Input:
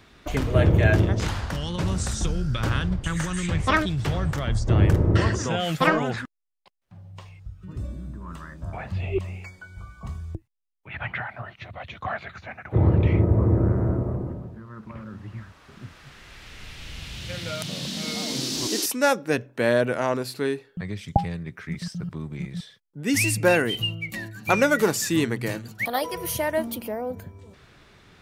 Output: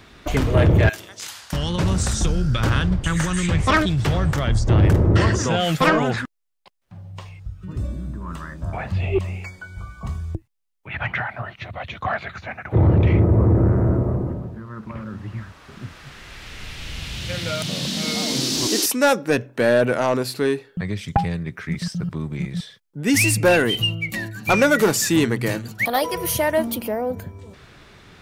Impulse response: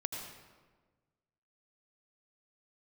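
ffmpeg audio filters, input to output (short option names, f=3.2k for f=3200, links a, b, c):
-filter_complex "[0:a]asettb=1/sr,asplit=3[a][b][c];[a]atrim=end=0.894[d];[b]atrim=start=0.89:end=1.53,asetpts=PTS-STARTPTS,afade=t=in:d=0.004:c=qsin,afade=t=out:st=0.636:d=0.004:c=qsin,aderivative[e];[c]atrim=start=1.526[f];[d][e]acrossfade=d=0.004:c1=hsin:c2=qsin[g];[g][f]acrossfade=d=0.004:c1=qsin:c2=hsin,asoftclip=type=tanh:threshold=-14.5dB,volume=6dB"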